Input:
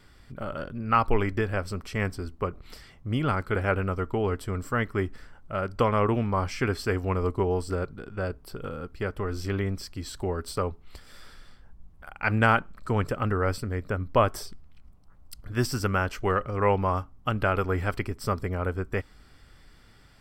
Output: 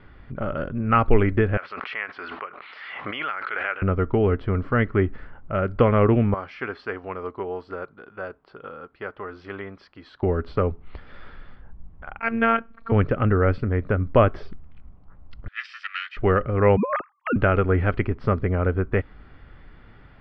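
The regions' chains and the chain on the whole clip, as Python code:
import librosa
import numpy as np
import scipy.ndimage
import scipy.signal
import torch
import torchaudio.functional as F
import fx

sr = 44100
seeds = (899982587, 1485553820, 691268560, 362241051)

y = fx.chain(x, sr, fx.highpass(hz=1400.0, slope=12),
    fx.air_absorb(metres=97.0),
    fx.pre_swell(db_per_s=24.0), at=(1.57, 3.82))
y = fx.chain(y, sr, fx.highpass(hz=1400.0, slope=6),
    fx.peak_eq(hz=2400.0, db=-5.0, octaves=1.0), at=(6.34, 10.23))
y = fx.chain(y, sr, fx.robotise(hz=228.0),
    fx.low_shelf(hz=170.0, db=-11.5), at=(12.19, 12.92))
y = fx.chain(y, sr, fx.lower_of_two(delay_ms=1.6),
    fx.steep_highpass(hz=1600.0, slope=36),
    fx.high_shelf(hz=8100.0, db=9.5), at=(15.48, 16.17))
y = fx.chain(y, sr, fx.sine_speech(),
    fx.over_compress(threshold_db=-26.0, ratio=-0.5), at=(16.77, 17.36))
y = scipy.signal.sosfilt(scipy.signal.bessel(6, 2000.0, 'lowpass', norm='mag', fs=sr, output='sos'), y)
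y = fx.dynamic_eq(y, sr, hz=950.0, q=2.0, threshold_db=-43.0, ratio=4.0, max_db=-8)
y = y * librosa.db_to_amplitude(7.5)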